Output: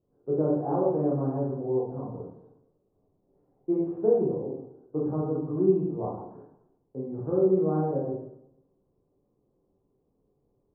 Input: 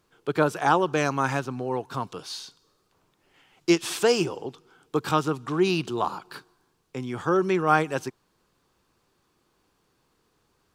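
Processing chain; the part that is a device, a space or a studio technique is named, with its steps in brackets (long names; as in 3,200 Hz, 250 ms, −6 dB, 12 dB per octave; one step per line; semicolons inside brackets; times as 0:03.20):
next room (low-pass filter 640 Hz 24 dB per octave; convolution reverb RT60 0.85 s, pre-delay 17 ms, DRR −5.5 dB)
level −6.5 dB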